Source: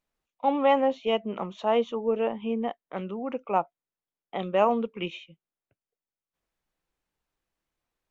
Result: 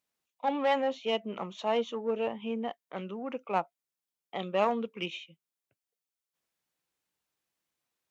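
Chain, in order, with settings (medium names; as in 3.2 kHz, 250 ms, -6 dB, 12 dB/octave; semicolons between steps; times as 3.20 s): single-diode clipper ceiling -15 dBFS; high-pass 100 Hz 12 dB/octave; treble shelf 2.4 kHz +9 dB; trim -4.5 dB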